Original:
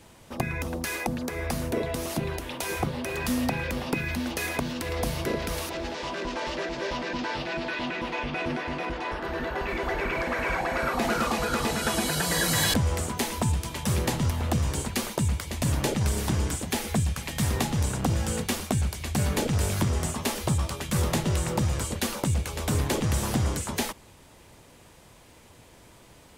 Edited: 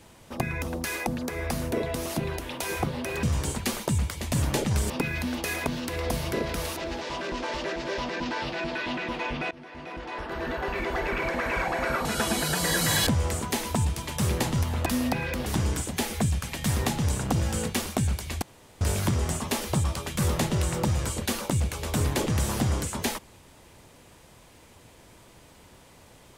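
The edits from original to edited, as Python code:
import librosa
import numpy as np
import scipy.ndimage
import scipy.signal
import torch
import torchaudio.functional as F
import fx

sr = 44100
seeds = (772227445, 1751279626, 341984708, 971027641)

y = fx.edit(x, sr, fx.swap(start_s=3.23, length_s=0.6, other_s=14.53, other_length_s=1.67),
    fx.fade_in_from(start_s=8.44, length_s=0.99, floor_db=-22.5),
    fx.cut(start_s=10.98, length_s=0.74),
    fx.room_tone_fill(start_s=19.16, length_s=0.39), tone=tone)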